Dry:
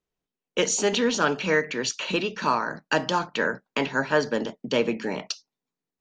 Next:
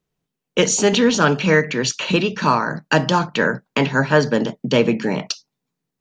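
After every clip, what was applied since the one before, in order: peaking EQ 140 Hz +10 dB 1.1 oct; trim +6 dB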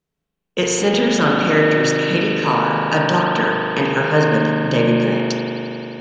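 spring tank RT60 3.8 s, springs 39 ms, chirp 50 ms, DRR -3.5 dB; trim -3.5 dB

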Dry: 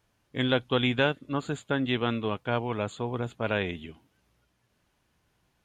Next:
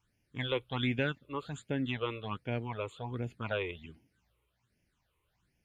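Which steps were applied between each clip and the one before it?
phase shifter stages 8, 1.3 Hz, lowest notch 200–1200 Hz; trim -4 dB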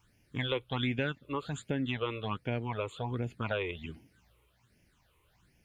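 compression 2:1, threshold -45 dBFS, peak gain reduction 10 dB; trim +9 dB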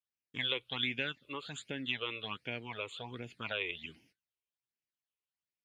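gate -60 dBFS, range -29 dB; frequency weighting D; trim -7.5 dB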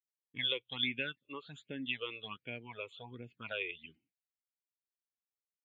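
level-controlled noise filter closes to 1.7 kHz, open at -35.5 dBFS; spectral contrast expander 1.5:1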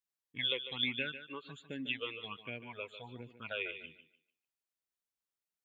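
thinning echo 148 ms, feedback 25%, high-pass 190 Hz, level -11 dB

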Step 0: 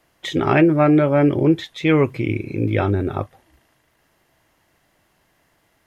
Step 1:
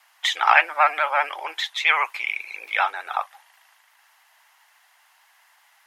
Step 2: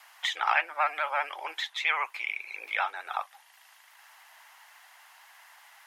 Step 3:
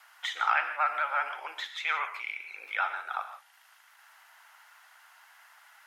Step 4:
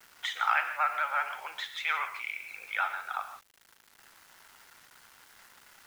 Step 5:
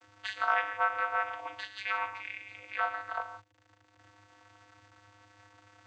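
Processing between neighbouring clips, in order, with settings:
elliptic high-pass 820 Hz, stop band 80 dB; vibrato 15 Hz 64 cents; trim +7 dB
three bands compressed up and down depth 40%; trim -7.5 dB
peaking EQ 1.4 kHz +9.5 dB 0.3 oct; gated-style reverb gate 190 ms flat, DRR 7.5 dB; trim -5 dB
bass shelf 360 Hz -8.5 dB; bit crusher 9-bit
vocoder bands 16, square 102 Hz

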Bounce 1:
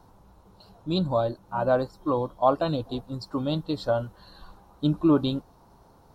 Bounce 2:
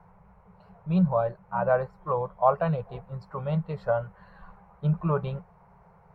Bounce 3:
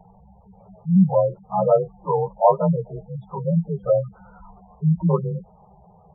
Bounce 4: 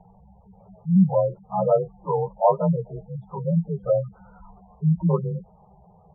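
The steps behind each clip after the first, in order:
FFT filter 120 Hz 0 dB, 180 Hz +10 dB, 280 Hz -29 dB, 420 Hz +1 dB, 1.5 kHz +4 dB, 2.2 kHz +9 dB, 3.6 kHz -18 dB; trim -2.5 dB
frequency axis rescaled in octaves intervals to 91%; spectral gate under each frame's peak -15 dB strong; trim +8 dB
distance through air 490 m; trim -1 dB

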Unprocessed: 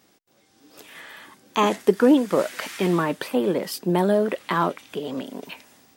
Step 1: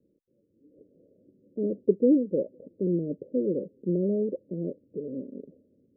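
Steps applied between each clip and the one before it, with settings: steep low-pass 560 Hz 96 dB/octave; trim -4.5 dB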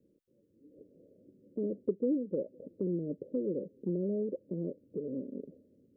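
compression 2:1, threshold -35 dBFS, peak gain reduction 11 dB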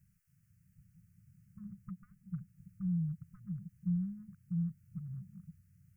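brick-wall FIR band-stop 190–1000 Hz; static phaser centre 990 Hz, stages 6; trim +13.5 dB

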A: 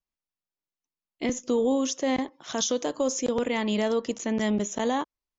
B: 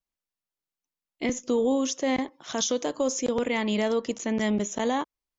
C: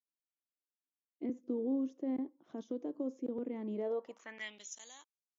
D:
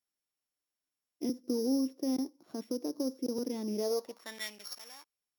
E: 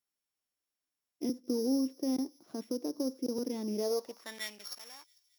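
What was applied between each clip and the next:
dynamic bell 2.2 kHz, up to +4 dB, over -50 dBFS, Q 5.9
band-pass sweep 300 Hz -> 6.5 kHz, 3.72–4.79 s; trim -6 dB
sorted samples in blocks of 8 samples; trim +4 dB
feedback echo behind a high-pass 223 ms, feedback 66%, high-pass 3.9 kHz, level -21 dB

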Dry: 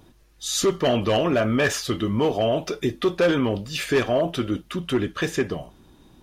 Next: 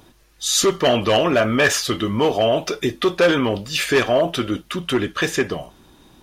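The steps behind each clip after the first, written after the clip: bass shelf 450 Hz -7 dB; trim +7 dB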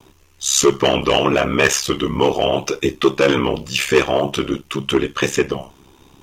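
rippled EQ curve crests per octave 0.73, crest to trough 6 dB; ring modulator 34 Hz; vibrato 0.81 Hz 22 cents; trim +4 dB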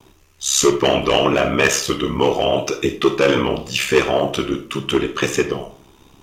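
algorithmic reverb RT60 0.43 s, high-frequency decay 0.55×, pre-delay 5 ms, DRR 8 dB; trim -1 dB

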